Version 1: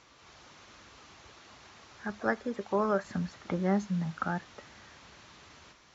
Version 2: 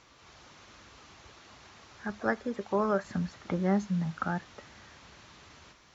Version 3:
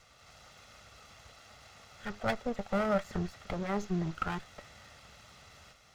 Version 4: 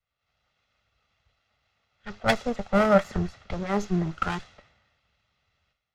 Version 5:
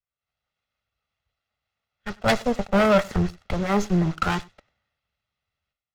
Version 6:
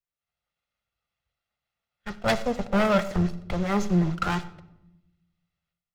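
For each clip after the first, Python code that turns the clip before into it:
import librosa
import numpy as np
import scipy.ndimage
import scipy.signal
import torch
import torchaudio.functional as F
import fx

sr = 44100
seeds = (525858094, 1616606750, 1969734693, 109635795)

y1 = fx.low_shelf(x, sr, hz=140.0, db=3.5)
y2 = fx.lower_of_two(y1, sr, delay_ms=1.5)
y3 = fx.env_lowpass(y2, sr, base_hz=2400.0, full_db=-28.0)
y3 = fx.band_widen(y3, sr, depth_pct=100)
y3 = y3 * librosa.db_to_amplitude(5.0)
y4 = fx.leveller(y3, sr, passes=3)
y4 = y4 + 10.0 ** (-23.5 / 20.0) * np.pad(y4, (int(96 * sr / 1000.0), 0))[:len(y4)]
y4 = y4 * librosa.db_to_amplitude(-5.0)
y5 = fx.room_shoebox(y4, sr, seeds[0], volume_m3=2900.0, walls='furnished', distance_m=0.84)
y5 = y5 * librosa.db_to_amplitude(-3.5)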